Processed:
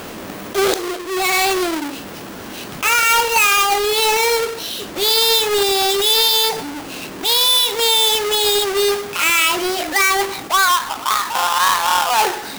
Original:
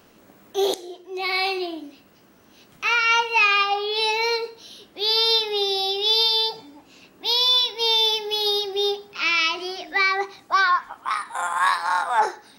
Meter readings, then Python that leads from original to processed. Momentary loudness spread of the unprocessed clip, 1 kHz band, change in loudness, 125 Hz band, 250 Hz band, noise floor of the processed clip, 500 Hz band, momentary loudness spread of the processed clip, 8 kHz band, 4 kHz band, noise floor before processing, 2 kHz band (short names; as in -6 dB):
11 LU, +5.5 dB, +5.5 dB, n/a, +9.5 dB, -32 dBFS, +7.5 dB, 14 LU, +19.5 dB, +4.5 dB, -54 dBFS, +4.5 dB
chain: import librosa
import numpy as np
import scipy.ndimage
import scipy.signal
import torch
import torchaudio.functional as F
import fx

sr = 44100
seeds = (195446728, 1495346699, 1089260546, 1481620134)

y = fx.halfwave_hold(x, sr)
y = fx.low_shelf(y, sr, hz=380.0, db=-4.5)
y = fx.env_flatten(y, sr, amount_pct=50)